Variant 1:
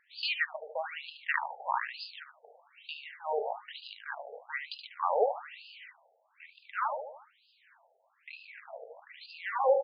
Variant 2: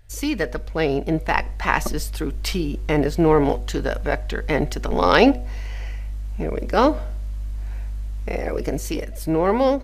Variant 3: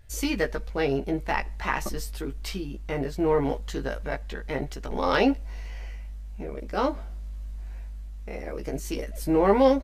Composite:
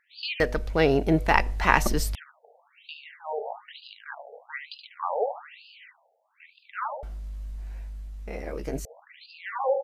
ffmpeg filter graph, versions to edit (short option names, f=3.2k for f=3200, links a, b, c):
-filter_complex "[0:a]asplit=3[a][b][c];[a]atrim=end=0.402[d];[1:a]atrim=start=0.398:end=2.152[e];[b]atrim=start=2.148:end=7.032[f];[2:a]atrim=start=7.028:end=8.852[g];[c]atrim=start=8.848[h];[d][e]acrossfade=d=0.004:c1=hsin:c2=hsin[i];[i][f]acrossfade=d=0.004:c1=hsin:c2=hsin[j];[j][g]acrossfade=d=0.004:c1=hsin:c2=hsin[k];[k][h]acrossfade=d=0.004:c1=hsin:c2=hsin"